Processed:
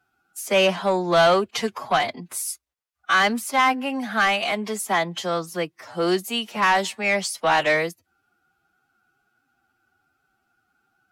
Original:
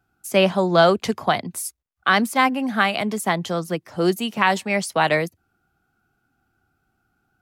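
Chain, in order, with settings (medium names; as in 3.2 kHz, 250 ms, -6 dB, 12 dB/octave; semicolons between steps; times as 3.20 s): overdrive pedal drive 15 dB, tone 7.7 kHz, clips at -2 dBFS; time stretch by phase-locked vocoder 1.5×; trim -6 dB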